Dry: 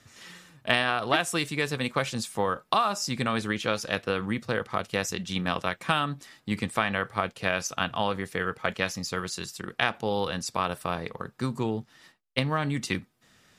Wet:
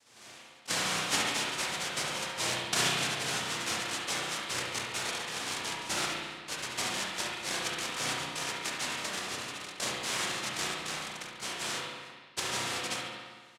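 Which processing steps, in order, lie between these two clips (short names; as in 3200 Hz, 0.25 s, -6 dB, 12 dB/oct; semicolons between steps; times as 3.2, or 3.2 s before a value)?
tone controls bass -6 dB, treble +5 dB; noise vocoder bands 1; on a send: feedback echo 70 ms, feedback 53%, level -11 dB; on the sum: spring tank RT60 1.5 s, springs 32/56 ms, chirp 25 ms, DRR -3 dB; gain -8 dB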